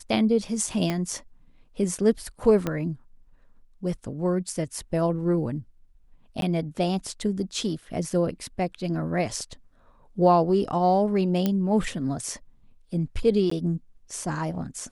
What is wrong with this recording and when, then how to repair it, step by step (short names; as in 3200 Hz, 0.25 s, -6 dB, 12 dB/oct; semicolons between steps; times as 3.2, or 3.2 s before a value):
0.9 pop -13 dBFS
2.67 pop -13 dBFS
6.41–6.42 gap 12 ms
11.46 pop -11 dBFS
13.5–13.51 gap 14 ms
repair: de-click; interpolate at 6.41, 12 ms; interpolate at 13.5, 14 ms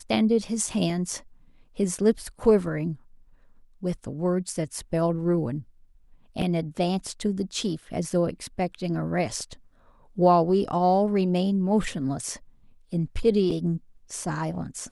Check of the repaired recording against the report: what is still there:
0.9 pop
2.67 pop